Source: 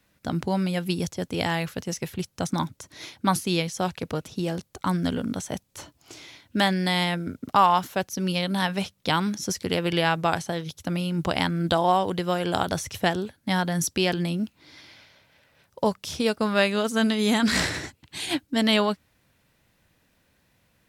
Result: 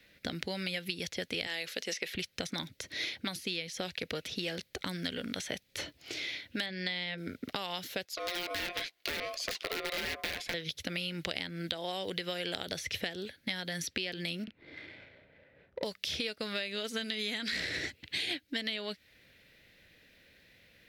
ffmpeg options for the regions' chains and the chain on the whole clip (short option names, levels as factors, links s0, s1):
-filter_complex "[0:a]asettb=1/sr,asplit=3[s0][s1][s2];[s0]atrim=end=1.474[s3];[s1]atrim=start=1.47:end=2.15,asetpts=PTS-STARTPTS,afade=t=in:d=0.004:c=qsin,afade=t=out:st=0.676:d=0.004:c=qsin,highpass=230,lowpass=7600,aemphasis=mode=production:type=bsi[s4];[s2]atrim=start=2.146[s5];[s3][s4]acrossfade=d=0.004:c1=hsin:c2=qsin[s6];[s6][s5]acrossfade=d=0.004:c1=qsin:c2=hsin,asettb=1/sr,asplit=3[s7][s8][s9];[s7]atrim=end=6.664[s10];[s8]atrim=start=6.66:end=7.18,asetpts=PTS-STARTPTS,afade=t=in:d=0.004:c=qsin,afade=t=out:st=0.516:d=0.004:c=qsin,lowpass=4600,bandreject=f=50:t=h:w=6,bandreject=f=100:t=h:w=6,bandreject=f=150:t=h:w=6,bandreject=f=200:t=h:w=6,bandreject=f=250:t=h:w=6,bandreject=f=300:t=h:w=6,bandreject=f=350:t=h:w=6,bandreject=f=400:t=h:w=6[s11];[s9]atrim=start=7.176[s12];[s10][s11]acrossfade=d=0.004:c1=hsin:c2=qsin[s13];[s13][s12]acrossfade=d=0.004:c1=qsin:c2=hsin,asettb=1/sr,asplit=3[s14][s15][s16];[s14]atrim=end=8.054[s17];[s15]atrim=start=8.05:end=10.54,asetpts=PTS-STARTPTS,afade=t=in:d=0.004:c=qsin,afade=t=out:st=2.486:d=0.004:c=qsin,highpass=f=370:p=1,aeval=exprs='(mod(12.6*val(0)+1,2)-1)/12.6':c=same,aeval=exprs='val(0)*sin(2*PI*880*n/s)':c=same[s18];[s16]atrim=start=10.536[s19];[s17][s18]acrossfade=d=0.004:c1=hsin:c2=qsin[s20];[s20][s19]acrossfade=d=0.004:c1=qsin:c2=hsin,asettb=1/sr,asplit=3[s21][s22][s23];[s21]atrim=end=14.444[s24];[s22]atrim=start=14.44:end=15.84,asetpts=PTS-STARTPTS,afade=t=in:d=0.004:c=qsin,afade=t=out:st=1.396:d=0.004:c=qsin,asplit=2[s25][s26];[s26]adelay=35,volume=0.708[s27];[s25][s27]amix=inputs=2:normalize=0,atrim=end_sample=61740,adynamicsmooth=sensitivity=6.5:basefreq=1000[s28];[s23]atrim=start=15.836[s29];[s24][s28]acrossfade=d=0.004:c1=hsin:c2=qsin[s30];[s30][s29]acrossfade=d=0.004:c1=qsin:c2=hsin,acrossover=split=820|3700[s31][s32][s33];[s31]acompressor=threshold=0.0141:ratio=4[s34];[s32]acompressor=threshold=0.0112:ratio=4[s35];[s33]acompressor=threshold=0.0112:ratio=4[s36];[s34][s35][s36]amix=inputs=3:normalize=0,equalizer=f=125:t=o:w=1:g=-3,equalizer=f=500:t=o:w=1:g=7,equalizer=f=1000:t=o:w=1:g=-11,equalizer=f=2000:t=o:w=1:g=11,equalizer=f=4000:t=o:w=1:g=8,equalizer=f=8000:t=o:w=1:g=-6,acompressor=threshold=0.0251:ratio=5"